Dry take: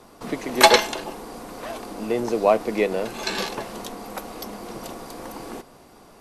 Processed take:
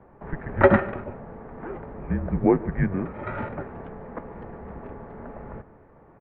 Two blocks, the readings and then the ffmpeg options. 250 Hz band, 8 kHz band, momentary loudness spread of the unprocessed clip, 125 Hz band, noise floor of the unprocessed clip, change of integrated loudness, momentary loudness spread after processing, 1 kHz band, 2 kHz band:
+3.0 dB, under -40 dB, 21 LU, +12.0 dB, -50 dBFS, -3.0 dB, 21 LU, -7.0 dB, -5.5 dB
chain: -filter_complex "[0:a]highpass=f=290:t=q:w=0.5412,highpass=f=290:t=q:w=1.307,lowpass=f=2.1k:t=q:w=0.5176,lowpass=f=2.1k:t=q:w=0.7071,lowpass=f=2.1k:t=q:w=1.932,afreqshift=-280,bandreject=f=760:w=25,asplit=2[a][b];[b]adelay=145.8,volume=-19dB,highshelf=f=4k:g=-3.28[c];[a][c]amix=inputs=2:normalize=0,volume=-1dB"

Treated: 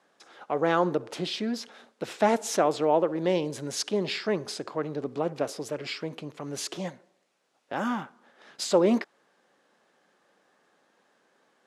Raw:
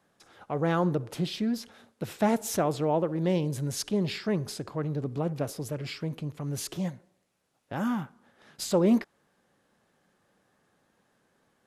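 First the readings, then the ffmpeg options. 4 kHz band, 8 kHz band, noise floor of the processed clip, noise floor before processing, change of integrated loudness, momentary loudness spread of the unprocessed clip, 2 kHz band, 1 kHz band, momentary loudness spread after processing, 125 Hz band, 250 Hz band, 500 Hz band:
+4.0 dB, +1.5 dB, -70 dBFS, -72 dBFS, +1.0 dB, 10 LU, +4.5 dB, +4.5 dB, 13 LU, -7.5 dB, -2.0 dB, +3.5 dB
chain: -af "highpass=320,lowpass=7.4k,volume=4.5dB"

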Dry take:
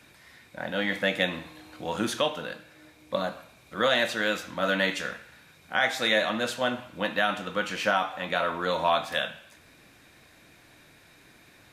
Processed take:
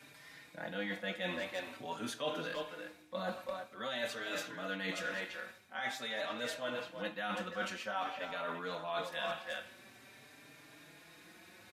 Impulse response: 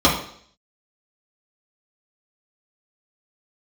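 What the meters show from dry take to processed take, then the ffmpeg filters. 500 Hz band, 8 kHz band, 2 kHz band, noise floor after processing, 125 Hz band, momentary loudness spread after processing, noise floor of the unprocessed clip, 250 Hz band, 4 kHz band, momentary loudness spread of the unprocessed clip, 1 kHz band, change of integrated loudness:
-11.0 dB, -9.0 dB, -11.5 dB, -59 dBFS, -10.5 dB, 18 LU, -56 dBFS, -11.0 dB, -12.0 dB, 15 LU, -11.5 dB, -12.0 dB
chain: -filter_complex "[0:a]highpass=130,asplit=2[a][b];[b]adelay=340,highpass=300,lowpass=3.4k,asoftclip=type=hard:threshold=-20dB,volume=-9dB[c];[a][c]amix=inputs=2:normalize=0,areverse,acompressor=threshold=-33dB:ratio=12,areverse,asplit=2[d][e];[e]adelay=4.6,afreqshift=0.48[f];[d][f]amix=inputs=2:normalize=1,volume=1dB"

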